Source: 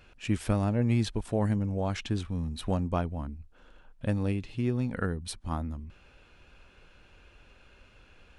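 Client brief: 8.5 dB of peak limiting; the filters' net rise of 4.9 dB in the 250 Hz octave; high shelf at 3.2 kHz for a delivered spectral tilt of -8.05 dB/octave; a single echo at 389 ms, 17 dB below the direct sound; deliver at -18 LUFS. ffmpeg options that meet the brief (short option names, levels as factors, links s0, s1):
-af "equalizer=f=250:t=o:g=6,highshelf=f=3200:g=-3.5,alimiter=limit=0.0944:level=0:latency=1,aecho=1:1:389:0.141,volume=4.47"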